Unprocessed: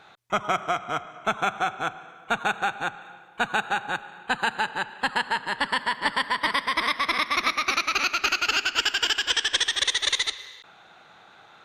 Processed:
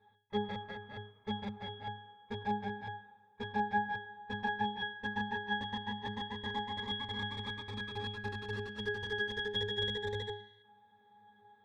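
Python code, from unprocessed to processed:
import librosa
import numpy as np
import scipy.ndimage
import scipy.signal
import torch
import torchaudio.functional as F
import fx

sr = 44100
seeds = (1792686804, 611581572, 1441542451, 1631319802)

y = fx.cheby_harmonics(x, sr, harmonics=(6,), levels_db=(-7,), full_scale_db=-7.5)
y = fx.octave_resonator(y, sr, note='G#', decay_s=0.44)
y = y * 10.0 ** (5.5 / 20.0)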